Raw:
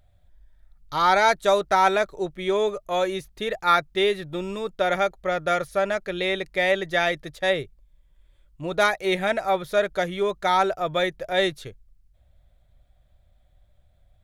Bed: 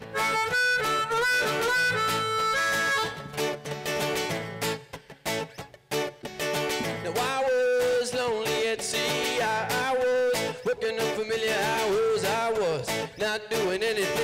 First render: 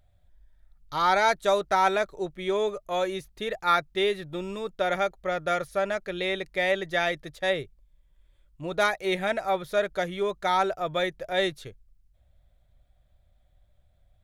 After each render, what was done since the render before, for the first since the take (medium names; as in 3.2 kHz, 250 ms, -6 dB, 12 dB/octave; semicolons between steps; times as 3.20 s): trim -3.5 dB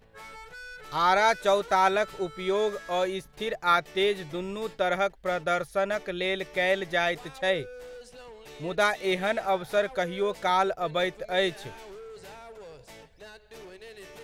add bed -19.5 dB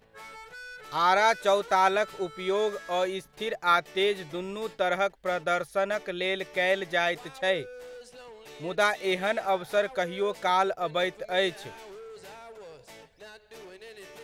bass shelf 110 Hz -10 dB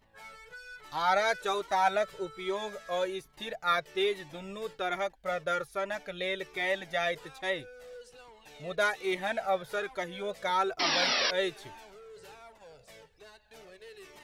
10.79–11.31 s: painted sound noise 220–5800 Hz -24 dBFS; Shepard-style flanger falling 1.2 Hz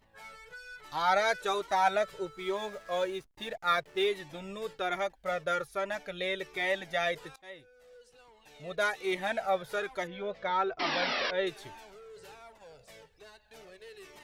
2.25–4.08 s: hysteresis with a dead band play -47.5 dBFS; 7.36–9.20 s: fade in, from -20 dB; 10.07–11.47 s: distance through air 220 m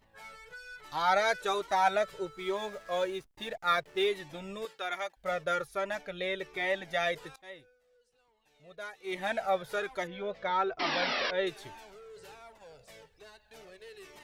4.65–5.17 s: high-pass 970 Hz 6 dB/octave; 6.01–6.88 s: treble shelf 4.3 kHz -6 dB; 7.49–9.33 s: dip -13 dB, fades 0.31 s equal-power